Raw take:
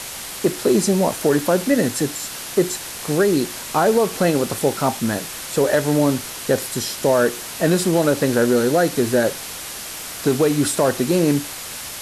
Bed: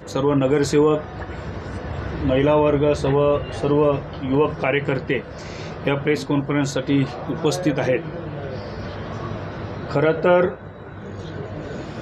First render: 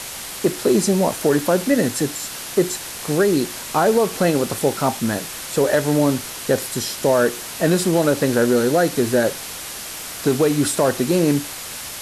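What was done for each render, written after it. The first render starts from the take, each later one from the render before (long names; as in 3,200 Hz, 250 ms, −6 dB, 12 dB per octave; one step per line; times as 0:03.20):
no processing that can be heard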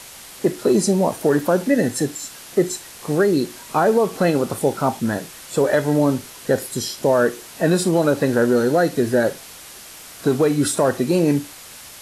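noise reduction from a noise print 8 dB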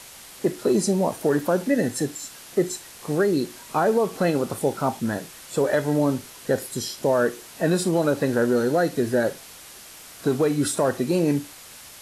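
level −4 dB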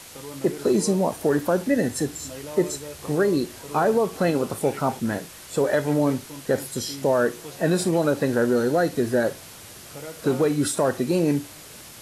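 mix in bed −20 dB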